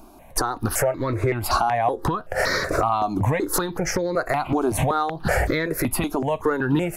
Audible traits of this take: notches that jump at a steady rate 5.3 Hz 510–2800 Hz

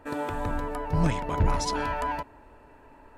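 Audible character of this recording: noise floor -54 dBFS; spectral tilt -5.5 dB/octave

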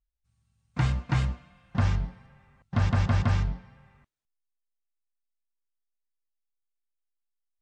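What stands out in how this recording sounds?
noise floor -81 dBFS; spectral tilt -6.5 dB/octave

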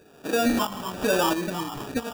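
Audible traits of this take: phasing stages 8, 1 Hz, lowest notch 470–3000 Hz; aliases and images of a low sample rate 2.1 kHz, jitter 0%; tremolo saw up 1.5 Hz, depth 60%

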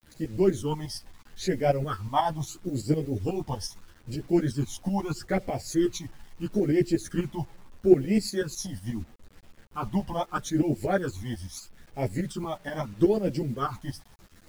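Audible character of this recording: tremolo saw up 8.2 Hz, depth 75%; phasing stages 12, 0.77 Hz, lowest notch 410–1200 Hz; a quantiser's noise floor 10-bit, dither none; a shimmering, thickened sound

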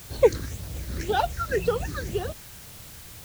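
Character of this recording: phasing stages 6, 1.9 Hz, lowest notch 690–2100 Hz; a quantiser's noise floor 8-bit, dither triangular

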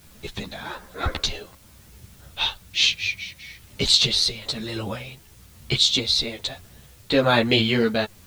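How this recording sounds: tremolo triangle 1.1 Hz, depth 60%; a quantiser's noise floor 10-bit, dither triangular; a shimmering, thickened sound

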